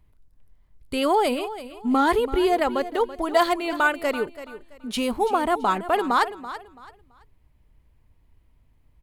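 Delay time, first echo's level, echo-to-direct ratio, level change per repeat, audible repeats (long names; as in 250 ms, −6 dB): 333 ms, −14.0 dB, −13.5 dB, −11.5 dB, 2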